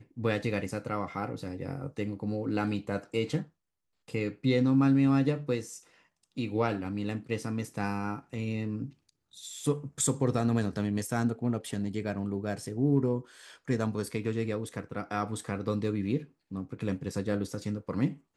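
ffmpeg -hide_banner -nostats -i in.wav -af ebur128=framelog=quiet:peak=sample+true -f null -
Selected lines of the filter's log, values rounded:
Integrated loudness:
  I:         -31.4 LUFS
  Threshold: -41.8 LUFS
Loudness range:
  LRA:         5.5 LU
  Threshold: -51.6 LUFS
  LRA low:   -34.3 LUFS
  LRA high:  -28.8 LUFS
Sample peak:
  Peak:      -13.7 dBFS
True peak:
  Peak:      -13.6 dBFS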